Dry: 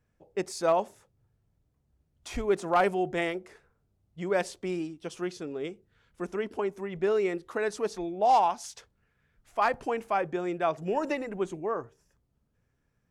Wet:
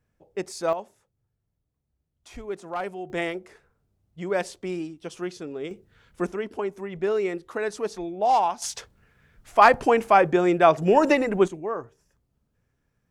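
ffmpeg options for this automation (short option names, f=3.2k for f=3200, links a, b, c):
-af "asetnsamples=n=441:p=0,asendcmd='0.73 volume volume -7dB;3.1 volume volume 1.5dB;5.71 volume volume 8dB;6.32 volume volume 1.5dB;8.62 volume volume 11dB;11.48 volume volume 1.5dB',volume=0.5dB"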